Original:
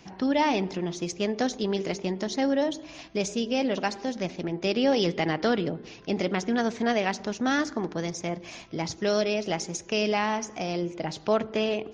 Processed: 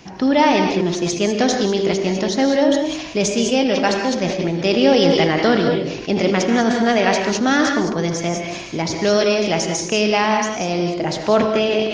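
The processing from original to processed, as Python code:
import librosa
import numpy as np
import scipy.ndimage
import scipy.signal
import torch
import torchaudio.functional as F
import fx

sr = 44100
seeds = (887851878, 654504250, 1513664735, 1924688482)

p1 = x + fx.echo_single(x, sr, ms=80, db=-16.5, dry=0)
p2 = fx.rev_gated(p1, sr, seeds[0], gate_ms=220, shape='rising', drr_db=4.0)
p3 = fx.sustainer(p2, sr, db_per_s=52.0)
y = F.gain(torch.from_numpy(p3), 8.0).numpy()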